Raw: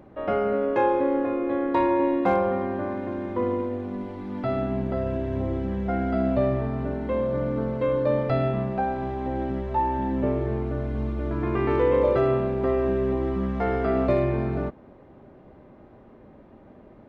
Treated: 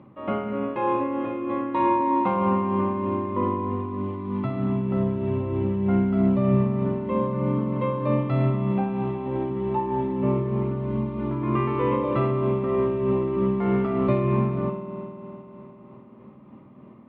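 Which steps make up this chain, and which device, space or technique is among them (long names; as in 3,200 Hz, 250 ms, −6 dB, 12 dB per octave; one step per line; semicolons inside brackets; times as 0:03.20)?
combo amplifier with spring reverb and tremolo (spring reverb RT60 3.6 s, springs 51 ms, chirp 55 ms, DRR 4 dB; amplitude tremolo 3.2 Hz, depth 38%; loudspeaker in its box 110–3,600 Hz, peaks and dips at 130 Hz +9 dB, 220 Hz +6 dB, 450 Hz −6 dB, 700 Hz −8 dB, 1,100 Hz +8 dB, 1,600 Hz −9 dB)
parametric band 2,600 Hz +2.5 dB 0.77 octaves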